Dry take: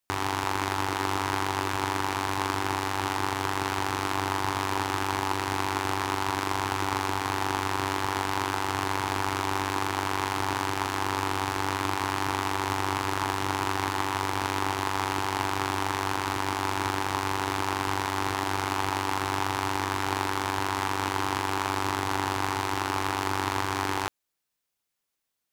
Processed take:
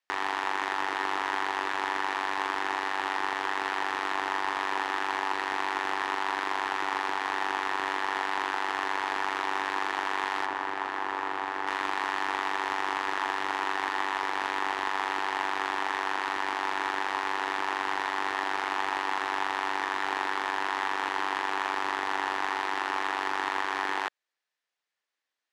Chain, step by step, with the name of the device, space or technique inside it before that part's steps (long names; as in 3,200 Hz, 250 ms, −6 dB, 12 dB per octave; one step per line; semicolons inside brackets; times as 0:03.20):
intercom (band-pass filter 460–4,700 Hz; parametric band 1,800 Hz +7 dB 0.29 octaves; soft clipping −14.5 dBFS, distortion −19 dB)
0:10.46–0:11.67: high-shelf EQ 2,500 Hz −9.5 dB